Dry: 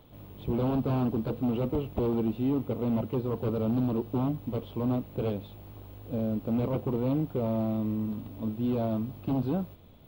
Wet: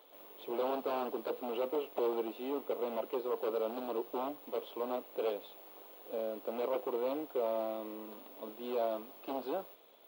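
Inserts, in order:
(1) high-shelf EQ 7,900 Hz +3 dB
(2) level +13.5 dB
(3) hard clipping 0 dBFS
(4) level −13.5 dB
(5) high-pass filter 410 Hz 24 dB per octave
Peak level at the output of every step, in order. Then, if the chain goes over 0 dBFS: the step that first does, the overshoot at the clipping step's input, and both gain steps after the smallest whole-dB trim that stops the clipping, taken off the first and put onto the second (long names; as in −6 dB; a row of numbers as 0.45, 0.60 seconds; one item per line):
−16.5, −3.0, −3.0, −16.5, −23.0 dBFS
no step passes full scale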